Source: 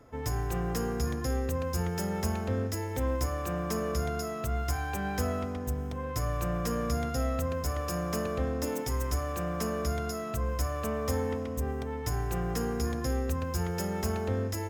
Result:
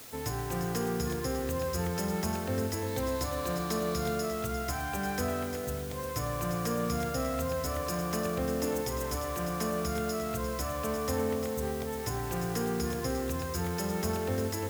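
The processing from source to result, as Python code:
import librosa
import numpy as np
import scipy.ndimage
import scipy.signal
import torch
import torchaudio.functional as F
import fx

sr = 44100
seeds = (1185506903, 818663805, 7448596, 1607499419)

y = scipy.signal.sosfilt(scipy.signal.butter(2, 100.0, 'highpass', fs=sr, output='sos'), x)
y = fx.quant_dither(y, sr, seeds[0], bits=8, dither='triangular')
y = fx.peak_eq(y, sr, hz=4000.0, db=8.0, octaves=0.33, at=(2.86, 4.16))
y = y + 10.0 ** (-8.5 / 20.0) * np.pad(y, (int(350 * sr / 1000.0), 0))[:len(y)]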